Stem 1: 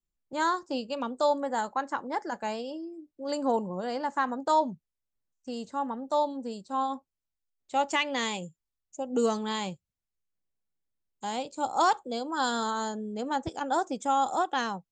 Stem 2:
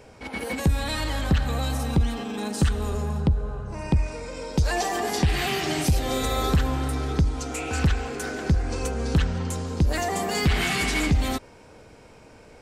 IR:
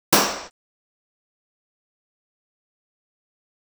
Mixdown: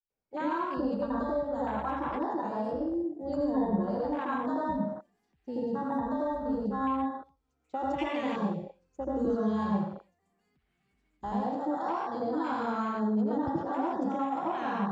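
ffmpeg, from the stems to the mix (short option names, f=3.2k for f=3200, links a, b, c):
-filter_complex "[0:a]lowpass=f=5.9k:w=0.5412,lowpass=f=5.9k:w=1.3066,alimiter=limit=-20.5dB:level=0:latency=1,volume=-1dB,asplit=3[a][b][c];[b]volume=-21dB[d];[1:a]acrossover=split=110|270|1000|2500[e][f][g][h][i];[e]acompressor=threshold=-31dB:ratio=4[j];[f]acompressor=threshold=-31dB:ratio=4[k];[g]acompressor=threshold=-40dB:ratio=4[l];[h]acompressor=threshold=-38dB:ratio=4[m];[i]acompressor=threshold=-46dB:ratio=4[n];[j][k][l][m][n]amix=inputs=5:normalize=0,alimiter=limit=-21dB:level=0:latency=1:release=410,flanger=delay=4.4:depth=2.6:regen=-83:speed=1.1:shape=triangular,adelay=100,volume=-12dB[o];[c]apad=whole_len=560612[p];[o][p]sidechaingate=range=-10dB:threshold=-44dB:ratio=16:detection=peak[q];[2:a]atrim=start_sample=2205[r];[d][r]afir=irnorm=-1:irlink=0[s];[a][q][s]amix=inputs=3:normalize=0,afwtdn=0.0251,acrossover=split=210|3000[t][u][v];[u]acompressor=threshold=-32dB:ratio=4[w];[t][w][v]amix=inputs=3:normalize=0"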